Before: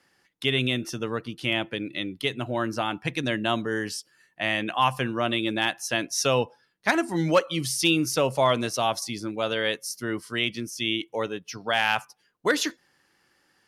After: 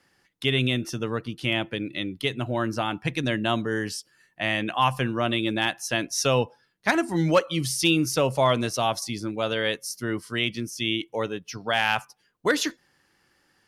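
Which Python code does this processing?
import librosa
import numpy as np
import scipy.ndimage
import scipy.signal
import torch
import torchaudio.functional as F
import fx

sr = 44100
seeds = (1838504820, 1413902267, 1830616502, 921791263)

y = fx.low_shelf(x, sr, hz=130.0, db=7.5)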